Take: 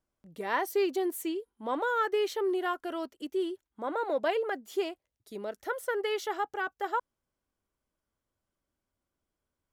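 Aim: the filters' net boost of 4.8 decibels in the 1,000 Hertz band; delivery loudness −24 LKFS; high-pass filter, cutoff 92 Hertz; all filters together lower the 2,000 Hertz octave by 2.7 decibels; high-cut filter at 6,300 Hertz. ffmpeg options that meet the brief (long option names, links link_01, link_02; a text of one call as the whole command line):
ffmpeg -i in.wav -af "highpass=92,lowpass=6300,equalizer=frequency=1000:width_type=o:gain=8,equalizer=frequency=2000:width_type=o:gain=-8.5,volume=6.5dB" out.wav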